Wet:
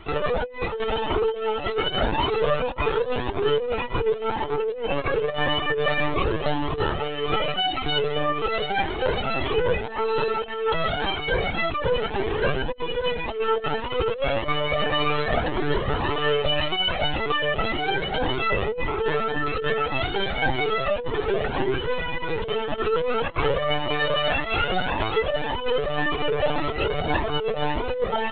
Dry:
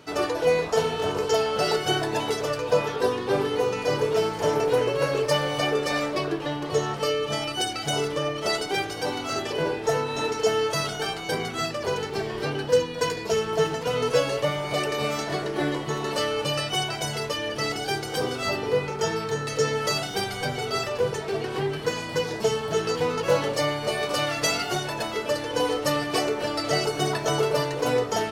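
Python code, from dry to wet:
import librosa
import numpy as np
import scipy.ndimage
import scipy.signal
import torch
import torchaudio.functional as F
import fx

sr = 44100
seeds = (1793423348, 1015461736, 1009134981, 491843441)

y = fx.over_compress(x, sr, threshold_db=-26.0, ratio=-0.5)
y = fx.lpc_vocoder(y, sr, seeds[0], excitation='pitch_kept', order=16)
y = fx.comb_cascade(y, sr, direction='rising', hz=1.8)
y = y * 10.0 ** (8.0 / 20.0)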